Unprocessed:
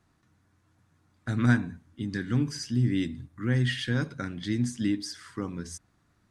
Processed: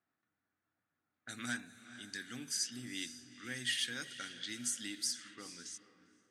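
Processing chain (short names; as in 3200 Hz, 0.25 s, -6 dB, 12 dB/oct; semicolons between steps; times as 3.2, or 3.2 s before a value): soft clip -12 dBFS, distortion -23 dB; thirty-one-band EQ 250 Hz +5 dB, 1000 Hz -10 dB, 5000 Hz -4 dB; on a send: diffused feedback echo 0.462 s, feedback 42%, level -13 dB; on the sum: low-pass opened by the level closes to 1200 Hz, open at -26.5 dBFS; differentiator; gain +6.5 dB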